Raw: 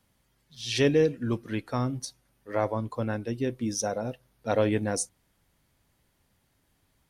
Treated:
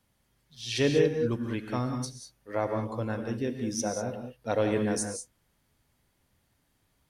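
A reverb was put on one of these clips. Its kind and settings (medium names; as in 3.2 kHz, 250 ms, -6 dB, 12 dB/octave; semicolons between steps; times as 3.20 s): gated-style reverb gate 220 ms rising, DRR 5 dB; trim -2.5 dB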